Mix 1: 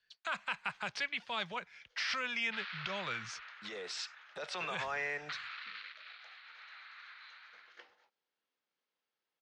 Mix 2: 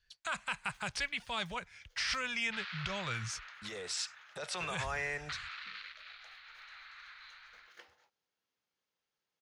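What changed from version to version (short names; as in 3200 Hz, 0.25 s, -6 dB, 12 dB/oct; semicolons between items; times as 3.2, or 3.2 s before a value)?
master: remove three-band isolator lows -24 dB, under 170 Hz, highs -24 dB, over 5700 Hz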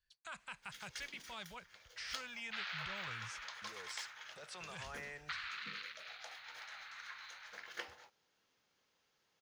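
speech -11.5 dB; first sound +11.0 dB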